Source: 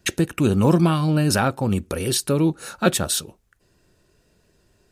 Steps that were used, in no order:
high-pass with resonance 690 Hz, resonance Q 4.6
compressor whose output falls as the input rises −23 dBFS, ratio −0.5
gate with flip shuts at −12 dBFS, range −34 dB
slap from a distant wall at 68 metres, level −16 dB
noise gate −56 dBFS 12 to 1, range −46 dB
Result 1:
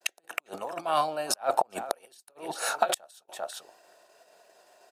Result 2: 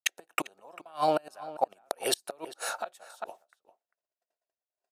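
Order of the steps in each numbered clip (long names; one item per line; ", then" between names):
compressor whose output falls as the input rises, then slap from a distant wall, then gate with flip, then noise gate, then high-pass with resonance
gate with flip, then high-pass with resonance, then noise gate, then slap from a distant wall, then compressor whose output falls as the input rises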